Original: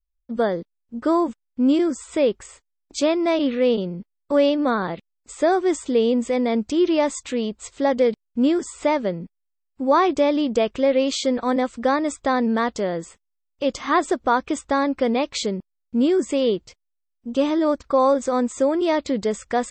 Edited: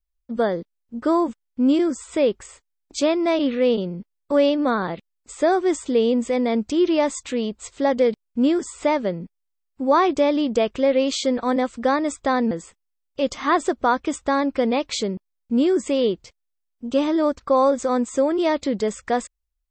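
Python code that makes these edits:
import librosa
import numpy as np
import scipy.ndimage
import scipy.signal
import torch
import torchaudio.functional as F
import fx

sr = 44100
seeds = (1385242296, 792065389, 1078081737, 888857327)

y = fx.edit(x, sr, fx.cut(start_s=12.51, length_s=0.43), tone=tone)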